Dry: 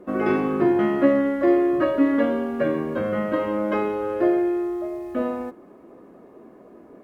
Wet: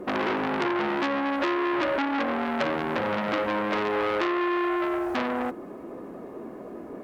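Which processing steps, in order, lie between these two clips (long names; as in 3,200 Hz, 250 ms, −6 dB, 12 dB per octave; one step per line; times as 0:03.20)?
downward compressor 8 to 1, threshold −26 dBFS, peak gain reduction 14 dB
saturating transformer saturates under 2,400 Hz
level +8 dB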